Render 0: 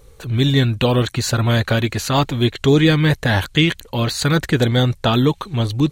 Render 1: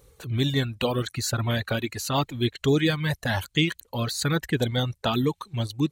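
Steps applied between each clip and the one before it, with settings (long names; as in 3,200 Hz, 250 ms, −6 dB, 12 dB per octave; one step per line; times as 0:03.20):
high-pass filter 47 Hz
reverb reduction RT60 1.8 s
high-shelf EQ 8,400 Hz +6 dB
level −7 dB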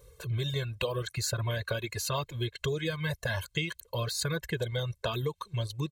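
comb filter 1.9 ms, depth 92%
downward compressor, threshold −24 dBFS, peak gain reduction 9.5 dB
level −4 dB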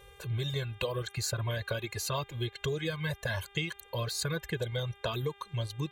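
hum with harmonics 400 Hz, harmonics 9, −57 dBFS −1 dB per octave
level −1.5 dB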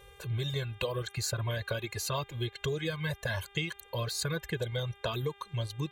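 no processing that can be heard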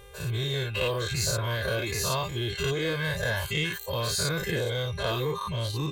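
every bin's largest magnitude spread in time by 120 ms
in parallel at −6.5 dB: hard clipping −30 dBFS, distortion −8 dB
on the sum: level −2 dB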